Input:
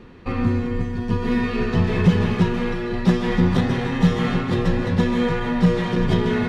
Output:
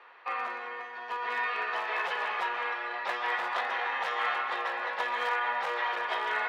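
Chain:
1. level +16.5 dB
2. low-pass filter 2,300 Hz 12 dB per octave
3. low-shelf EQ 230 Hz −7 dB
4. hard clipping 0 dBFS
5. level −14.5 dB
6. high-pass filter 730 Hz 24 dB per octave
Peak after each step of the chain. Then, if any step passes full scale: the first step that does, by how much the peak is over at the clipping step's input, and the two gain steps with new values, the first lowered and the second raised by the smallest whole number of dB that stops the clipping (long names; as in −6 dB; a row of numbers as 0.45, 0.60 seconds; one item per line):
+11.5, +11.5, +9.0, 0.0, −14.5, −17.5 dBFS
step 1, 9.0 dB
step 1 +7.5 dB, step 5 −5.5 dB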